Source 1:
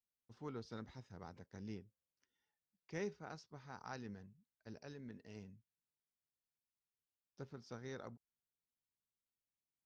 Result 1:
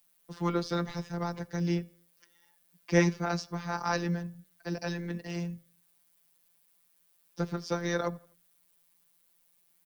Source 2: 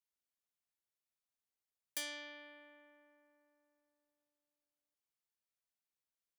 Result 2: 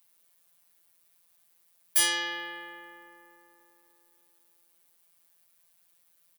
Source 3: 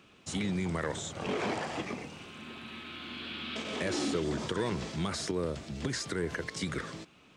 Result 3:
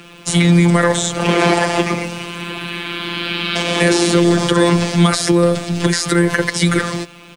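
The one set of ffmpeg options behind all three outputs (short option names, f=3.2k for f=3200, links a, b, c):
-filter_complex "[0:a]afftfilt=real='hypot(re,im)*cos(PI*b)':imag='0':win_size=1024:overlap=0.75,acrossover=split=130|420|1900[a][b][c][d];[d]aexciter=amount=2.1:drive=5.6:freq=9k[e];[a][b][c][e]amix=inputs=4:normalize=0,asplit=2[f][g];[g]adelay=83,lowpass=f=4.6k:p=1,volume=-23.5dB,asplit=2[h][i];[i]adelay=83,lowpass=f=4.6k:p=1,volume=0.42,asplit=2[j][k];[k]adelay=83,lowpass=f=4.6k:p=1,volume=0.42[l];[f][h][j][l]amix=inputs=4:normalize=0,alimiter=level_in=24.5dB:limit=-1dB:release=50:level=0:latency=1,volume=-1.5dB"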